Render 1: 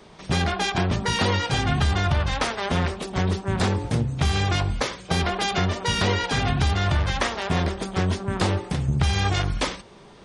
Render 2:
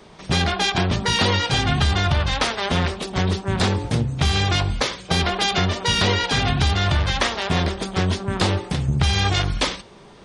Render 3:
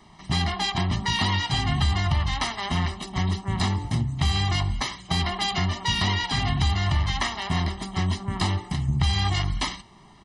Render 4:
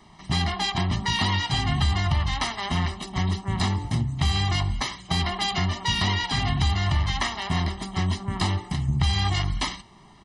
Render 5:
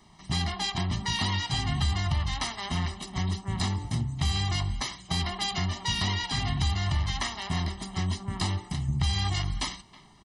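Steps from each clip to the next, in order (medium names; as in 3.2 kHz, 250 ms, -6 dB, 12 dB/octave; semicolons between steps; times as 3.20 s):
dynamic bell 3.8 kHz, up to +5 dB, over -43 dBFS, Q 1.1; trim +2 dB
comb 1 ms, depth 91%; trim -8 dB
no audible change
tone controls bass +2 dB, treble +6 dB; speakerphone echo 320 ms, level -19 dB; trim -6 dB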